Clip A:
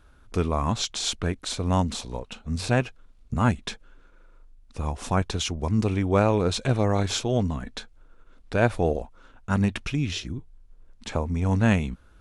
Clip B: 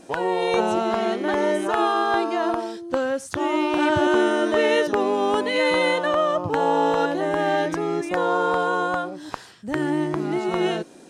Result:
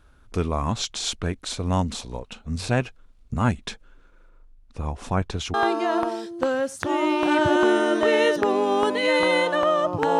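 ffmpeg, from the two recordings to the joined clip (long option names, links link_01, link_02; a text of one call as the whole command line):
ffmpeg -i cue0.wav -i cue1.wav -filter_complex "[0:a]asettb=1/sr,asplit=3[link_01][link_02][link_03];[link_01]atrim=end=4.294[link_04];[link_02]atrim=start=4.29:end=5.54,asetpts=PTS-STARTPTS,afade=type=in:duration=0.004:curve=qsin,afade=type=out:start_time=1.246:duration=0.004:curve=qsin,highshelf=frequency=3600:gain=-7[link_05];[link_03]atrim=start=5.536[link_06];[link_04][link_05]acrossfade=duration=0.004:curve1=hsin:curve2=qsin[link_07];[link_07][link_06]acrossfade=duration=0.004:curve1=qsin:curve2=hsin,apad=whole_dur=10.19,atrim=end=10.19,atrim=end=5.542[link_08];[1:a]atrim=start=2.048:end=6.7[link_09];[link_08][link_09]acrossfade=duration=0.004:curve1=hsin:curve2=hsin" out.wav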